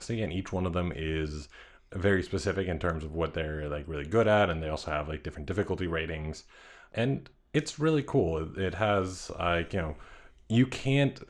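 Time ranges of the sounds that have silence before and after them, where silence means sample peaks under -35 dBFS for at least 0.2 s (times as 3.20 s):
1.92–6.38 s
6.94–7.26 s
7.54–9.93 s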